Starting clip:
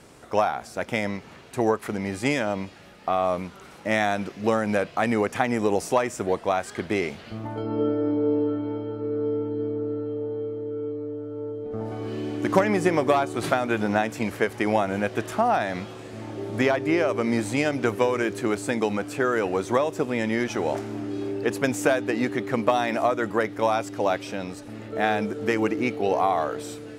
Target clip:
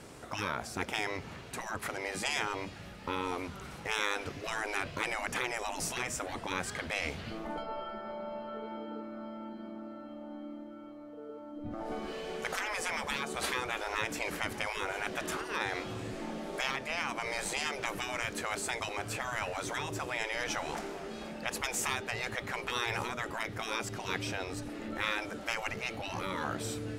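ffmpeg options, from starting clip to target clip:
-af "asubboost=boost=3:cutoff=190,afftfilt=real='re*lt(hypot(re,im),0.126)':imag='im*lt(hypot(re,im),0.126)':win_size=1024:overlap=0.75"

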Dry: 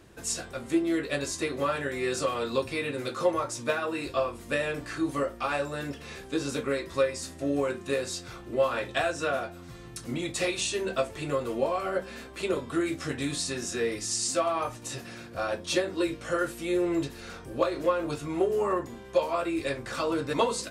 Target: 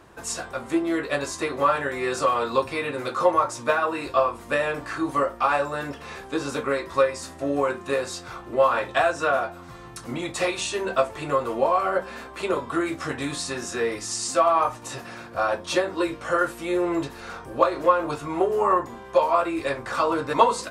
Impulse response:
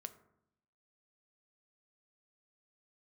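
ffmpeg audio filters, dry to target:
-af "equalizer=f=990:t=o:w=1.5:g=11.5"

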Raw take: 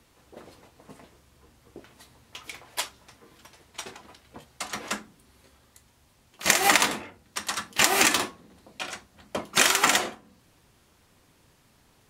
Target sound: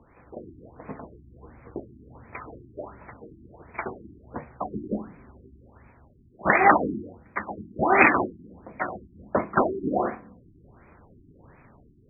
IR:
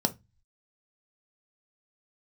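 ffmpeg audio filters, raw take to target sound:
-af "dynaudnorm=f=210:g=5:m=1.58,afftfilt=real='re*lt(b*sr/1024,380*pow(2600/380,0.5+0.5*sin(2*PI*1.4*pts/sr)))':imag='im*lt(b*sr/1024,380*pow(2600/380,0.5+0.5*sin(2*PI*1.4*pts/sr)))':win_size=1024:overlap=0.75,volume=2.11"

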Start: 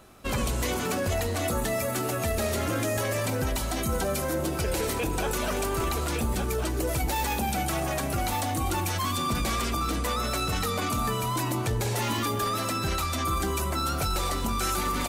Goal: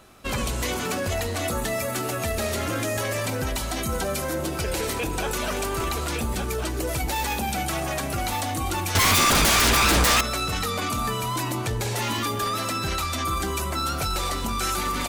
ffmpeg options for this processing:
-filter_complex "[0:a]equalizer=f=3300:w=0.37:g=3.5,asettb=1/sr,asplit=3[s0][s1][s2];[s0]atrim=end=8.954[s3];[s1]atrim=start=8.95:end=10.21,asetpts=PTS-STARTPTS,afade=t=in:d=0.004:c=qsin,afade=t=out:st=1.256:d=0.004:c=qsin,aeval=exprs='0.168*sin(PI/2*3.98*val(0)/0.168)':c=same[s4];[s2]atrim=start=10.206[s5];[s3][s4]acrossfade=d=0.004:c1=hsin:c2=qsin[s6];[s6][s5]acrossfade=d=0.004:c1=qsin:c2=hsin"

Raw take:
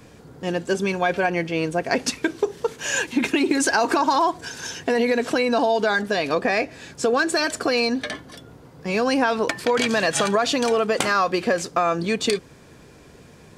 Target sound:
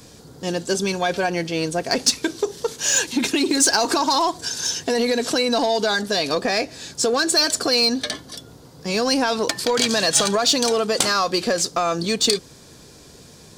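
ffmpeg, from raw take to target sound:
-filter_complex "[0:a]highshelf=f=3200:t=q:w=1.5:g=8.5,asplit=2[s0][s1];[s1]asoftclip=type=hard:threshold=0.126,volume=0.501[s2];[s0][s2]amix=inputs=2:normalize=0,volume=0.708"

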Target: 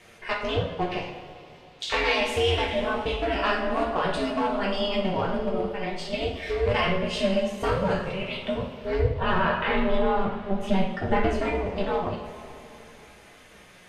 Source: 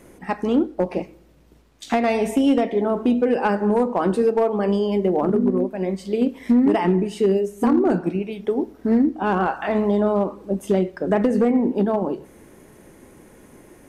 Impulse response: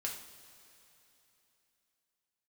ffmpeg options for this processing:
-filter_complex "[0:a]asplit=2[s0][s1];[s1]highpass=f=720:p=1,volume=1.78,asoftclip=type=tanh:threshold=0.299[s2];[s0][s2]amix=inputs=2:normalize=0,lowpass=f=4600:p=1,volume=0.501,aeval=exprs='val(0)*sin(2*PI*190*n/s)':c=same,asettb=1/sr,asplit=3[s3][s4][s5];[s3]atrim=end=8.994[s6];[s4]atrim=start=8.99:end=11.29,asetpts=PTS-STARTPTS,afade=t=in:d=0.004:c=qsin,afade=t=out:st=2.296:d=0.004:c=qsin,bass=f=250:g=8,treble=f=4000:g=-8[s7];[s5]atrim=start=11.286[s8];[s6][s7]acrossfade=d=0.004:c1=hsin:c2=qsin[s9];[s9][s8]acrossfade=d=0.004:c1=qsin:c2=hsin[s10];[1:a]atrim=start_sample=2205[s11];[s10][s11]afir=irnorm=-1:irlink=0,flanger=delay=8.5:depth=7.8:regen=-42:speed=0.18:shape=triangular,equalizer=f=3500:t=o:w=1.9:g=14,volume=1.26"

